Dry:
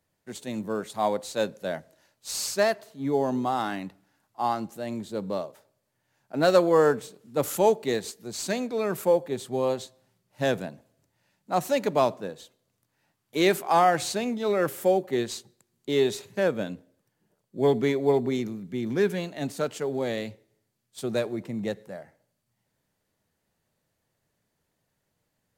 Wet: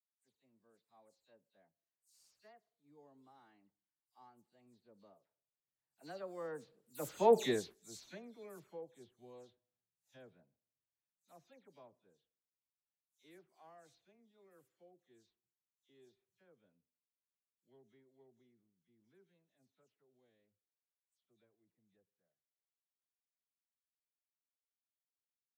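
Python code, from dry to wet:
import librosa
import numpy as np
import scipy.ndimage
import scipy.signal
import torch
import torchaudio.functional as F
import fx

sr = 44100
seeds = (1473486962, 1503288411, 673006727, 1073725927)

y = fx.spec_delay(x, sr, highs='early', ms=123)
y = fx.doppler_pass(y, sr, speed_mps=17, closest_m=1.0, pass_at_s=7.39)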